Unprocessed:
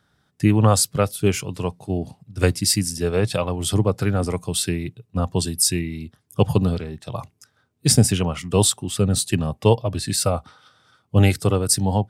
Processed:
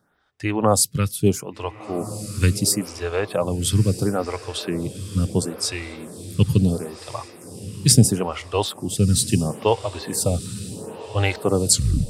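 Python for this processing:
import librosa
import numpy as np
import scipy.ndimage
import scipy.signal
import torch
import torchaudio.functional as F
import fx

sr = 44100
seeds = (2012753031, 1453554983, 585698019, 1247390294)

y = fx.tape_stop_end(x, sr, length_s=0.41)
y = fx.echo_diffused(y, sr, ms=1450, feedback_pct=44, wet_db=-13.5)
y = fx.stagger_phaser(y, sr, hz=0.74)
y = y * librosa.db_to_amplitude(2.5)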